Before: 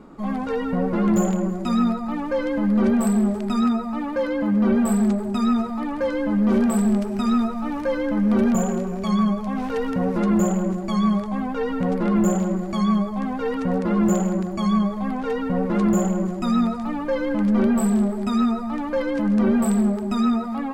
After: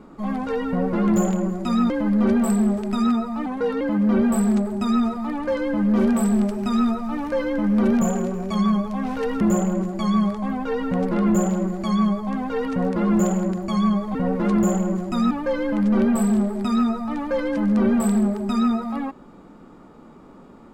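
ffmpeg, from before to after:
-filter_complex "[0:a]asplit=7[s0][s1][s2][s3][s4][s5][s6];[s0]atrim=end=1.902[s7];[s1]atrim=start=2.468:end=4.034[s8];[s2]atrim=start=4.03:end=4.34,asetpts=PTS-STARTPTS,asetrate=39249,aresample=44100[s9];[s3]atrim=start=4.336:end=9.942[s10];[s4]atrim=start=10.298:end=15.042[s11];[s5]atrim=start=15.448:end=16.612[s12];[s6]atrim=start=16.928[s13];[s7][s8]acrossfade=d=0.004:c1=hsin:c2=hsin[s14];[s14][s9]acrossfade=d=0.004:c1=hsin:c2=hsin[s15];[s15][s10]acrossfade=d=0.004:c1=hsin:c2=hsin[s16];[s16][s11]acrossfade=d=0.004:c1=hsin:c2=hsin[s17];[s17][s12]acrossfade=d=0.004:c1=hsin:c2=hsin[s18];[s18][s13]acrossfade=d=0.004:c1=hsin:c2=hsin"

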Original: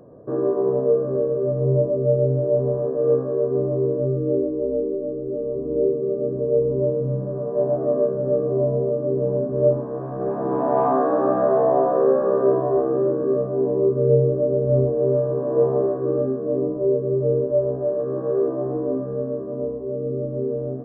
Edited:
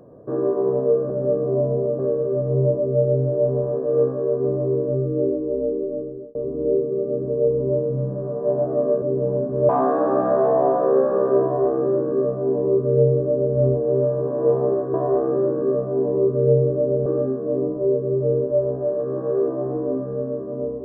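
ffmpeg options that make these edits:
-filter_complex "[0:a]asplit=8[s0][s1][s2][s3][s4][s5][s6][s7];[s0]atrim=end=1.102[s8];[s1]atrim=start=8.128:end=9.022[s9];[s2]atrim=start=1.098:end=5.46,asetpts=PTS-STARTPTS,afade=t=out:st=4.002:d=0.36[s10];[s3]atrim=start=5.46:end=8.132,asetpts=PTS-STARTPTS,afade=t=in:d=0.004:c=hsin[s11];[s4]atrim=start=9.018:end=9.692[s12];[s5]atrim=start=10.808:end=16.062[s13];[s6]atrim=start=12.558:end=14.682[s14];[s7]atrim=start=16.058[s15];[s8][s9]acrossfade=d=0.004:c1=hsin:c2=hsin[s16];[s10][s11]concat=n=2:v=0:a=1[s17];[s16][s17]acrossfade=d=0.004:c1=hsin:c2=hsin[s18];[s18][s12]acrossfade=d=0.004:c1=hsin:c2=hsin[s19];[s19][s13]acrossfade=d=0.004:c1=hsin:c2=hsin[s20];[s20][s14]acrossfade=d=0.004:c1=hsin:c2=hsin[s21];[s21][s15]acrossfade=d=0.004:c1=hsin:c2=hsin"

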